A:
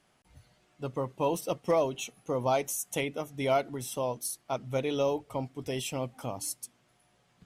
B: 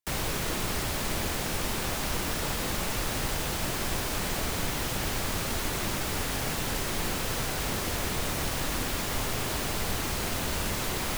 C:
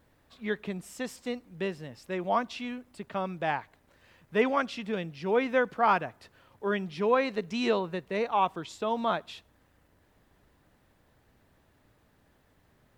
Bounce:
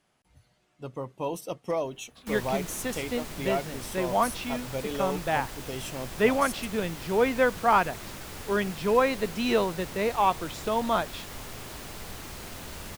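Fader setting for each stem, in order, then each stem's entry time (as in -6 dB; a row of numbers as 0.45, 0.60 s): -3.0, -10.0, +2.5 dB; 0.00, 2.20, 1.85 s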